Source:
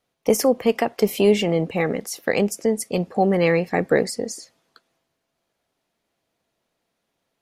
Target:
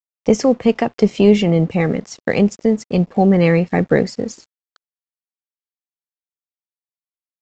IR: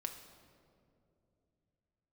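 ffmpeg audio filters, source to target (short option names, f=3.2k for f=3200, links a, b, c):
-af "bass=f=250:g=10,treble=f=4k:g=-2,aresample=16000,aeval=exprs='sgn(val(0))*max(abs(val(0))-0.00562,0)':c=same,aresample=44100,volume=2dB"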